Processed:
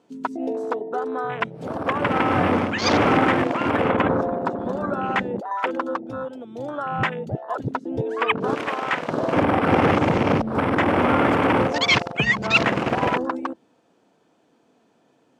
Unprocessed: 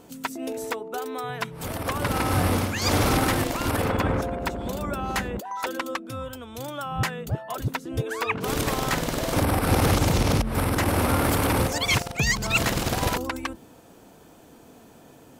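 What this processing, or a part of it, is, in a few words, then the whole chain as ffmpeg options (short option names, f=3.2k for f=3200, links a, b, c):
over-cleaned archive recording: -filter_complex "[0:a]asettb=1/sr,asplit=3[a][b][c];[a]atrim=end=8.554[d];[b]atrim=start=8.55:end=9.09,asetpts=PTS-STARTPTS,afade=t=in:d=0.004:c=qsin,afade=t=out:st=0.536:d=0.004:c=qsin,lowshelf=f=490:g=-12[e];[c]atrim=start=9.086[f];[d][e]acrossfade=d=0.004:c1=hsin:c2=qsin[g];[g][f]acrossfade=d=0.004:c1=qsin:c2=hsin,highpass=180,lowpass=5.4k,afwtdn=0.0282,volume=6dB"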